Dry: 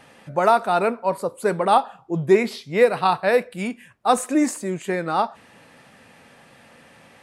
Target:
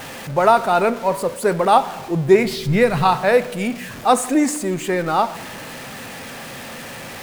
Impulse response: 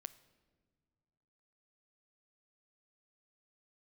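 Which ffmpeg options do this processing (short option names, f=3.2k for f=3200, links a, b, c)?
-filter_complex "[0:a]aeval=exprs='val(0)+0.5*0.0251*sgn(val(0))':c=same,asplit=3[a][b][c];[a]afade=t=out:st=2.45:d=0.02[d];[b]asubboost=boost=10.5:cutoff=150,afade=t=in:st=2.45:d=0.02,afade=t=out:st=3.03:d=0.02[e];[c]afade=t=in:st=3.03:d=0.02[f];[d][e][f]amix=inputs=3:normalize=0[g];[1:a]atrim=start_sample=2205[h];[g][h]afir=irnorm=-1:irlink=0,volume=7.5dB"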